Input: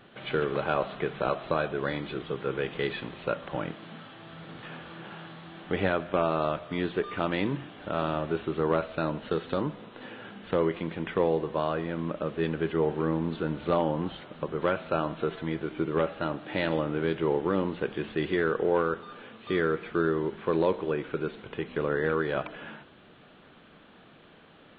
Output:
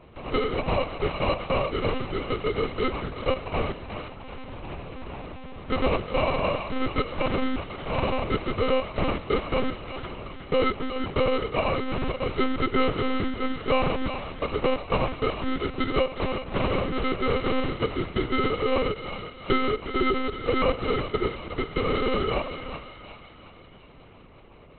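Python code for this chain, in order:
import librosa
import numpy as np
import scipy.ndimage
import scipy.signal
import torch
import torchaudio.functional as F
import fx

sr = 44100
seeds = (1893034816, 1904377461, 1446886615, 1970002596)

p1 = fx.low_shelf(x, sr, hz=350.0, db=5.0, at=(12.29, 12.97))
p2 = fx.transient(p1, sr, attack_db=7, sustain_db=-10, at=(18.89, 19.55), fade=0.02)
p3 = fx.rider(p2, sr, range_db=5, speed_s=0.5)
p4 = p2 + (p3 * librosa.db_to_amplitude(1.5))
p5 = fx.sample_hold(p4, sr, seeds[0], rate_hz=1700.0, jitter_pct=0)
p6 = p5 + fx.echo_thinned(p5, sr, ms=366, feedback_pct=57, hz=770.0, wet_db=-7.0, dry=0)
p7 = fx.lpc_monotone(p6, sr, seeds[1], pitch_hz=260.0, order=10)
y = p7 * librosa.db_to_amplitude(-3.5)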